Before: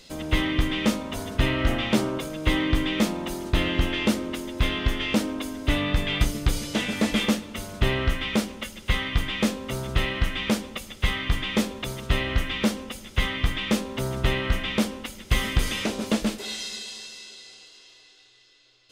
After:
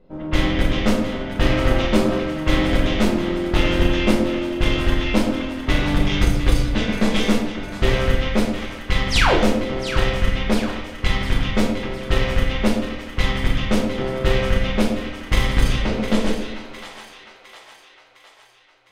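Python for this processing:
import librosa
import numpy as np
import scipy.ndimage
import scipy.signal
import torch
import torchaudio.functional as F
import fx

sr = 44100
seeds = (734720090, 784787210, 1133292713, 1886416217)

p1 = fx.spec_paint(x, sr, seeds[0], shape='fall', start_s=9.1, length_s=0.26, low_hz=270.0, high_hz=7100.0, level_db=-20.0)
p2 = fx.high_shelf(p1, sr, hz=4300.0, db=-5.5)
p3 = fx.cheby_harmonics(p2, sr, harmonics=(3, 8), levels_db=(-22, -19), full_scale_db=-7.5)
p4 = fx.env_lowpass(p3, sr, base_hz=770.0, full_db=-19.0)
p5 = p4 + fx.echo_split(p4, sr, split_hz=750.0, low_ms=126, high_ms=708, feedback_pct=52, wet_db=-10.0, dry=0)
p6 = fx.room_shoebox(p5, sr, seeds[1], volume_m3=130.0, walls='mixed', distance_m=1.0)
y = F.gain(torch.from_numpy(p6), 1.5).numpy()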